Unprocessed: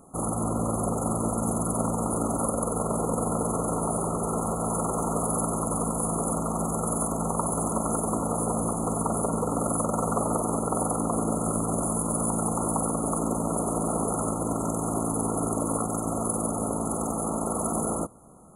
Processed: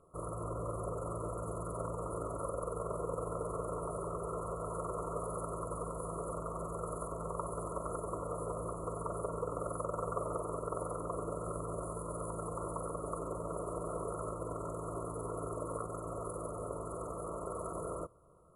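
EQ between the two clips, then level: distance through air 71 m; static phaser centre 1.2 kHz, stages 8; -7.0 dB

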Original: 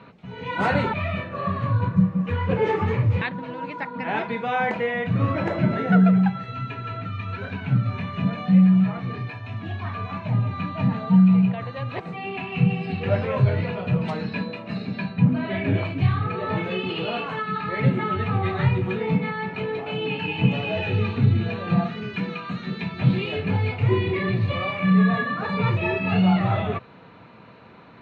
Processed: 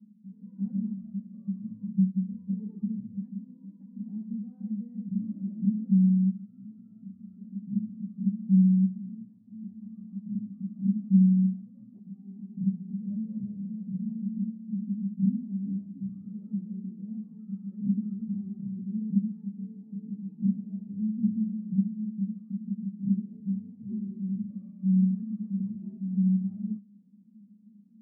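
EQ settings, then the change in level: Butterworth band-pass 210 Hz, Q 6.8; +3.5 dB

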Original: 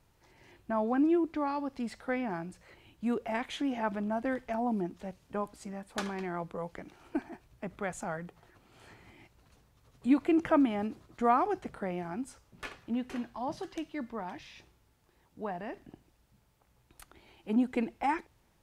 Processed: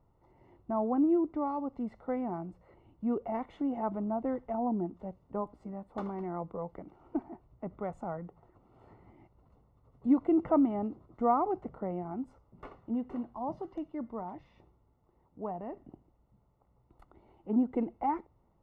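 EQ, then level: Savitzky-Golay filter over 65 samples; 0.0 dB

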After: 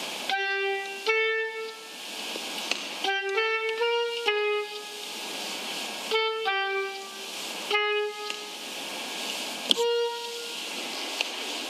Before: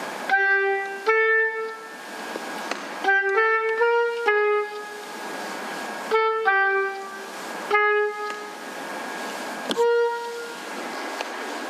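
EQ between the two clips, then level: high-pass 57 Hz; resonant high shelf 2.2 kHz +8.5 dB, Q 3; -5.5 dB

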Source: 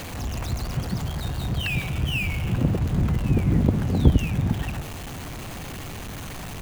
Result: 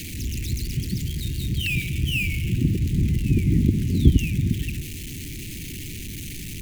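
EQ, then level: elliptic band-stop 350–2200 Hz, stop band 70 dB; peaking EQ 14 kHz +4.5 dB 1.8 oct; +1.5 dB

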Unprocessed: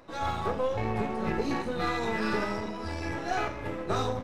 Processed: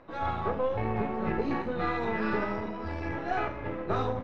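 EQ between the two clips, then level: low-pass 2.5 kHz 12 dB/octave; 0.0 dB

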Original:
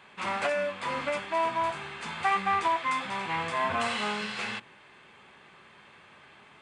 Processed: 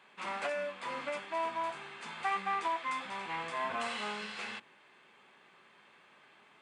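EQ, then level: high-pass 200 Hz 12 dB/octave; -7.0 dB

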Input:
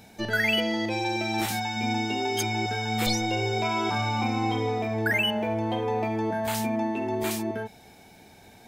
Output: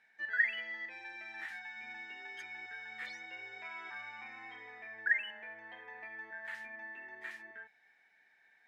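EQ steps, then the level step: band-pass filter 1.8 kHz, Q 13; +3.0 dB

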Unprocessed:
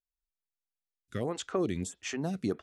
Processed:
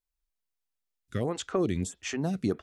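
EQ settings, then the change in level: bass shelf 110 Hz +7 dB; +2.0 dB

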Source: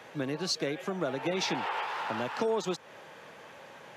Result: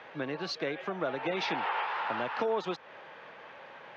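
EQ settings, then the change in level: distance through air 290 m; bass shelf 440 Hz -11.5 dB; +5.0 dB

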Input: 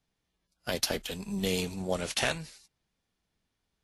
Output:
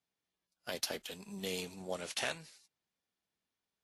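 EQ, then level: high-pass 290 Hz 6 dB/octave; -7.0 dB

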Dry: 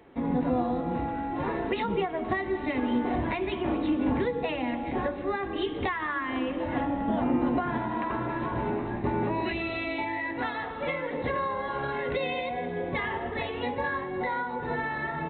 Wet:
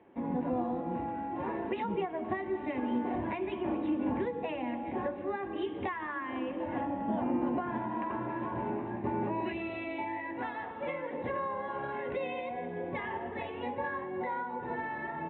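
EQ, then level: cabinet simulation 140–3000 Hz, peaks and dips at 150 Hz -9 dB, 270 Hz -6 dB, 450 Hz -7 dB, 700 Hz -4 dB, 1.3 kHz -8 dB, 2 kHz -4 dB; treble shelf 2.2 kHz -10 dB; 0.0 dB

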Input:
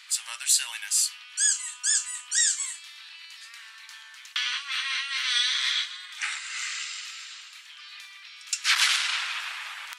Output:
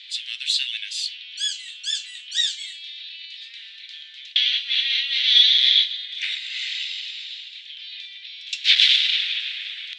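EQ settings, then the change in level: steep high-pass 1.9 kHz 36 dB/octave; resonant low-pass 3.6 kHz, resonance Q 5.2; -1.0 dB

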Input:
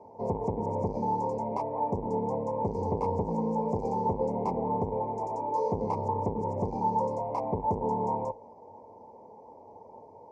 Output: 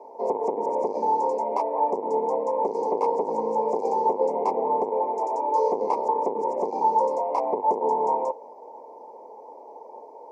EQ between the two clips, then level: high-pass 330 Hz 24 dB/octave; +7.0 dB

